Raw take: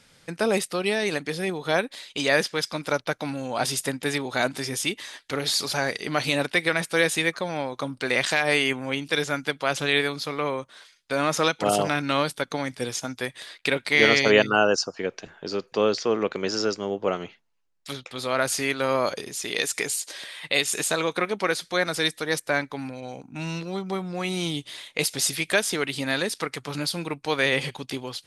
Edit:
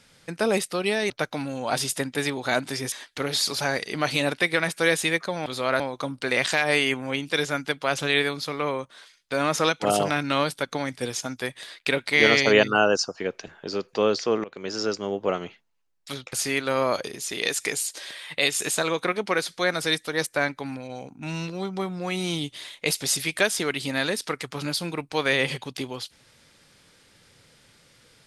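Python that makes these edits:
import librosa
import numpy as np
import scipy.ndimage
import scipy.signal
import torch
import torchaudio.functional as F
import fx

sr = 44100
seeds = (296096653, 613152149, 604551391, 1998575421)

y = fx.edit(x, sr, fx.cut(start_s=1.1, length_s=1.88),
    fx.cut(start_s=4.8, length_s=0.25),
    fx.fade_in_from(start_s=16.23, length_s=0.68, curve='qsin', floor_db=-20.5),
    fx.move(start_s=18.12, length_s=0.34, to_s=7.59), tone=tone)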